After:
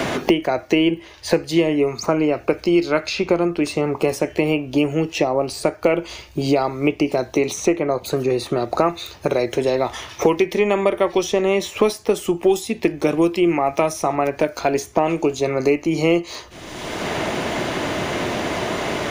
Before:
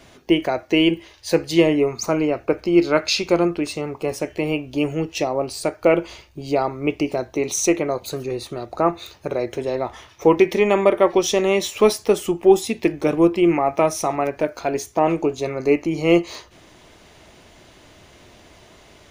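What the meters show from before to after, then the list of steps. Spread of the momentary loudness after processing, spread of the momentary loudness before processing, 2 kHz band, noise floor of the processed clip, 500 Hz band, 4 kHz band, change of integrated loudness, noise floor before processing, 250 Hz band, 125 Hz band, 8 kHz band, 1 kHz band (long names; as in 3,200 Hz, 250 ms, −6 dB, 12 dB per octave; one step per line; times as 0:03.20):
5 LU, 10 LU, +2.0 dB, −42 dBFS, +0.5 dB, +0.5 dB, 0.0 dB, −50 dBFS, +0.5 dB, +2.0 dB, −2.5 dB, +1.0 dB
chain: multiband upward and downward compressor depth 100%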